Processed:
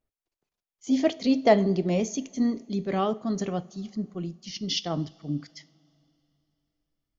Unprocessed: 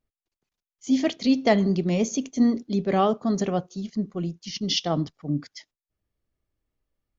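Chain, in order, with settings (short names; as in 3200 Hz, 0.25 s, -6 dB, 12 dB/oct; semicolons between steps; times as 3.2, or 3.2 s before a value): bell 610 Hz +5.5 dB 1.7 oct, from 2 s -2.5 dB; two-slope reverb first 0.39 s, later 3.1 s, from -18 dB, DRR 15 dB; gain -3.5 dB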